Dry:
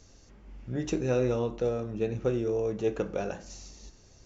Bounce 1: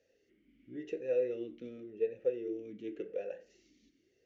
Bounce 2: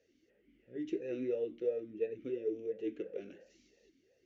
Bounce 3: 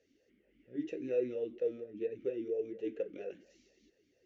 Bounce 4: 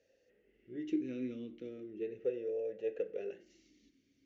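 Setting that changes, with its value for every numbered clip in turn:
vowel sweep, rate: 0.91, 2.9, 4.3, 0.37 Hz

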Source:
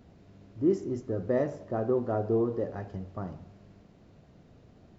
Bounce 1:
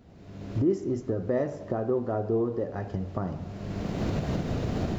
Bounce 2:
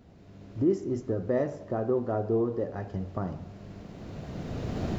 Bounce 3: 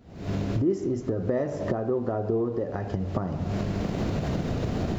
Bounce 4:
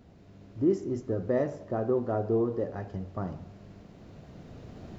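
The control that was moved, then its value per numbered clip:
recorder AGC, rising by: 32, 13, 87, 5.2 dB/s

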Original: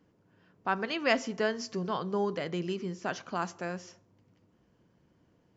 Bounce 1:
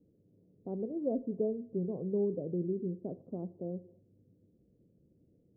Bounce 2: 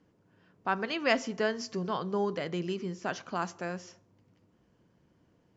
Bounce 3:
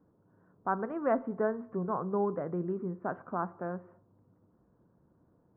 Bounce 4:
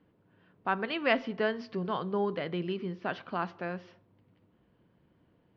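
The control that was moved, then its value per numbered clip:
steep low-pass, frequency: 530, 10000, 1400, 4000 Hz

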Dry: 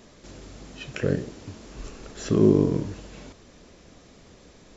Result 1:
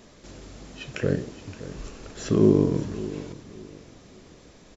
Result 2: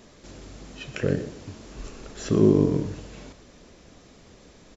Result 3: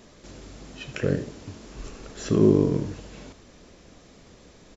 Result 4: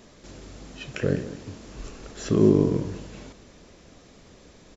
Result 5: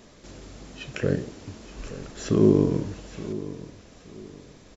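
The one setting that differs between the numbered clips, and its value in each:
feedback echo, time: 570, 121, 78, 203, 874 ms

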